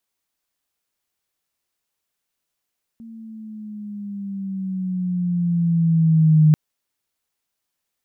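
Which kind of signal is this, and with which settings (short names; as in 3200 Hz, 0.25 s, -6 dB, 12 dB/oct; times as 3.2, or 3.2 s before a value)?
gliding synth tone sine, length 3.54 s, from 229 Hz, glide -7 st, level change +27 dB, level -9 dB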